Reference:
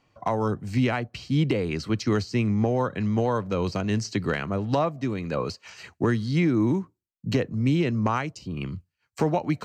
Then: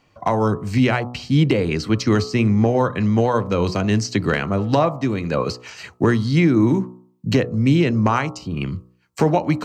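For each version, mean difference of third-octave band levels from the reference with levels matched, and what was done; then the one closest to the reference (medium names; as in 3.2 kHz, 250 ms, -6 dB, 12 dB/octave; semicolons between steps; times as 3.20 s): 1.5 dB: de-hum 61.17 Hz, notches 22; trim +7 dB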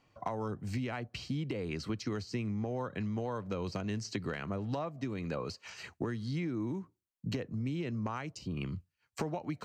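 2.5 dB: compression, threshold -30 dBFS, peak gain reduction 11.5 dB; trim -3 dB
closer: first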